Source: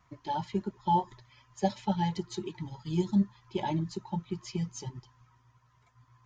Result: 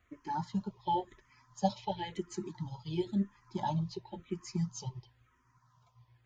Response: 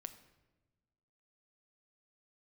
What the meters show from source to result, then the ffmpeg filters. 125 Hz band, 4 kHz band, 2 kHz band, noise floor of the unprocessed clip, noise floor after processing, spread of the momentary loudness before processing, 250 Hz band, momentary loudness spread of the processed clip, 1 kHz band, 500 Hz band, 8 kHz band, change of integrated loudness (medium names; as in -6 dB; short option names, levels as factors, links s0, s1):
-4.0 dB, -3.0 dB, -4.0 dB, -66 dBFS, -71 dBFS, 12 LU, -5.0 dB, 9 LU, -4.0 dB, -3.0 dB, no reading, -4.5 dB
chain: -filter_complex "[0:a]asplit=2[s0][s1];[s1]afreqshift=-0.96[s2];[s0][s2]amix=inputs=2:normalize=1"